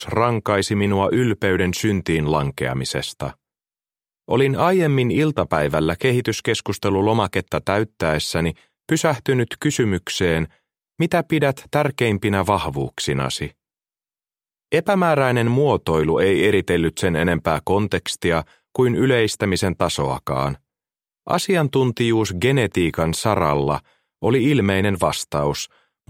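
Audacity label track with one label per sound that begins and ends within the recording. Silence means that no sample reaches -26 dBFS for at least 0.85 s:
4.290000	13.470000	sound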